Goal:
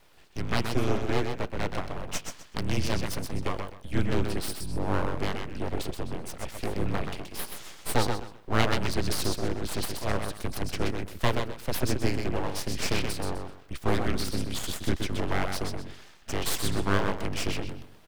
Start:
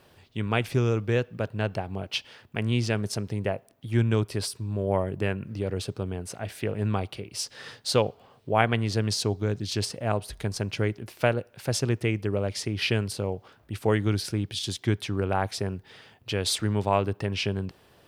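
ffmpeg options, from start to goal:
ffmpeg -i in.wav -af "aecho=1:1:127|254|381:0.531|0.133|0.0332,afreqshift=-72,aeval=exprs='abs(val(0))':channel_layout=same" out.wav

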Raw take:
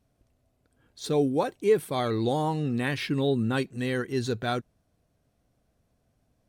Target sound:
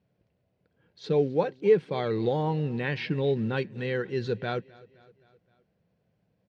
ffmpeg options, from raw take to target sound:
ffmpeg -i in.wav -af "acrusher=bits=8:mode=log:mix=0:aa=0.000001,highpass=110,equalizer=frequency=180:width_type=q:width=4:gain=8,equalizer=frequency=260:width_type=q:width=4:gain=-9,equalizer=frequency=490:width_type=q:width=4:gain=4,equalizer=frequency=690:width_type=q:width=4:gain=-5,equalizer=frequency=1200:width_type=q:width=4:gain=-7,equalizer=frequency=3600:width_type=q:width=4:gain=-5,lowpass=frequency=4200:width=0.5412,lowpass=frequency=4200:width=1.3066,aecho=1:1:260|520|780|1040:0.0708|0.0396|0.0222|0.0124" out.wav

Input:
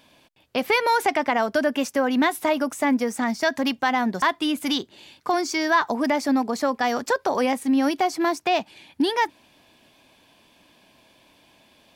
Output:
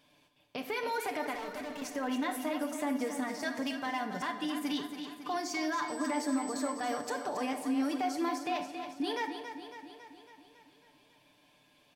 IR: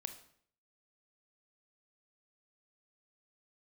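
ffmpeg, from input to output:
-filter_complex "[0:a]aecho=1:1:6.8:0.61,alimiter=limit=-15.5dB:level=0:latency=1:release=47,asettb=1/sr,asplit=3[link_01][link_02][link_03];[link_01]atrim=end=1.344[link_04];[link_02]atrim=start=1.34:end=1.82,asetpts=PTS-STARTPTS,afade=type=in:duration=0.004:curve=qsin,afade=type=out:start_time=0.476:duration=0.004:curve=qsin,asoftclip=type=hard:threshold=-29.5dB[link_05];[link_03]atrim=start=1.816[link_06];[link_04][link_05]acrossfade=duration=0.004:curve1=hsin:curve2=qsin[link_07];[link_07][link_06]acrossfade=duration=0.004:curve1=qsin:curve2=hsin,asettb=1/sr,asplit=3[link_08][link_09][link_10];[link_08]atrim=end=5.884[link_11];[link_09]atrim=start=5.88:end=6.72,asetpts=PTS-STARTPTS,afade=type=in:duration=0.004:curve=qsin,afade=type=out:start_time=0.836:duration=0.004:curve=qsin,aeval=exprs='val(0)+0.0126*sin(2*PI*8000*n/s)':channel_layout=same[link_12];[link_10]atrim=start=6.716[link_13];[link_11][link_12]acrossfade=duration=0.004:curve1=hsin:curve2=qsin[link_14];[link_14][link_13]acrossfade=duration=0.004:curve1=qsin:curve2=hsin,aecho=1:1:276|552|828|1104|1380|1656|1932:0.355|0.213|0.128|0.0766|0.046|0.0276|0.0166[link_15];[1:a]atrim=start_sample=2205[link_16];[link_15][link_16]afir=irnorm=-1:irlink=0,volume=-8dB"

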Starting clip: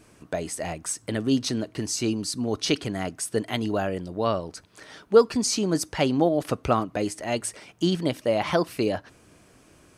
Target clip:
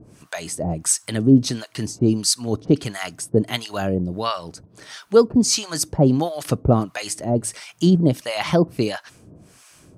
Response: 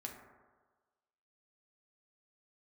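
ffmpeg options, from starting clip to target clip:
-filter_complex "[0:a]equalizer=frequency=140:width_type=o:width=1.4:gain=7.5,acrossover=split=3800[link_01][link_02];[link_02]acontrast=55[link_03];[link_01][link_03]amix=inputs=2:normalize=0,acrossover=split=790[link_04][link_05];[link_04]aeval=exprs='val(0)*(1-1/2+1/2*cos(2*PI*1.5*n/s))':channel_layout=same[link_06];[link_05]aeval=exprs='val(0)*(1-1/2-1/2*cos(2*PI*1.5*n/s))':channel_layout=same[link_07];[link_06][link_07]amix=inputs=2:normalize=0,volume=7dB"

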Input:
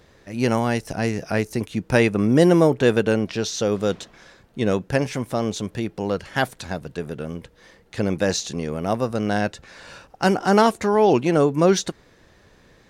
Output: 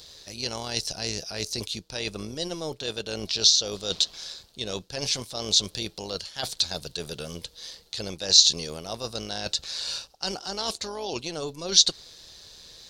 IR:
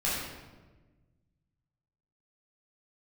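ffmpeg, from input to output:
-filter_complex "[0:a]tremolo=f=160:d=0.462,acrossover=split=7000[link_01][link_02];[link_02]acompressor=threshold=-56dB:ratio=4:attack=1:release=60[link_03];[link_01][link_03]amix=inputs=2:normalize=0,equalizer=frequency=125:width_type=o:width=1:gain=-3,equalizer=frequency=250:width_type=o:width=1:gain=-7,equalizer=frequency=2000:width_type=o:width=1:gain=6,areverse,acompressor=threshold=-30dB:ratio=8,areverse,highshelf=frequency=2900:width_type=q:width=3:gain=13.5"

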